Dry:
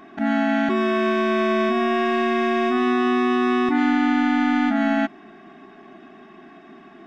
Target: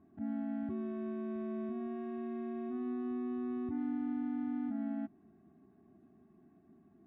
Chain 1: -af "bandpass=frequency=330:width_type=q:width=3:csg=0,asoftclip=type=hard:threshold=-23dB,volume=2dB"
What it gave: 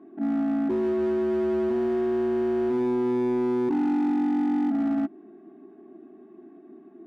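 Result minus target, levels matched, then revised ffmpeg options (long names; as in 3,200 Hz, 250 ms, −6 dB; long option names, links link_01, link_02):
125 Hz band −2.5 dB
-af "bandpass=frequency=87:width_type=q:width=3:csg=0,asoftclip=type=hard:threshold=-23dB,volume=2dB"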